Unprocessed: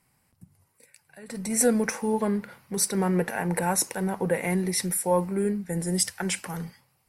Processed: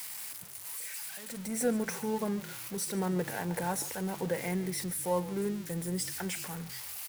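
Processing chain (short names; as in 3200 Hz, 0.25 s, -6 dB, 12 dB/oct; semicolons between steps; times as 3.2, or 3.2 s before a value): switching spikes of -19.5 dBFS; high shelf 4400 Hz -10 dB; frequency-shifting echo 0.144 s, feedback 34%, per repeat -41 Hz, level -17 dB; gain -7 dB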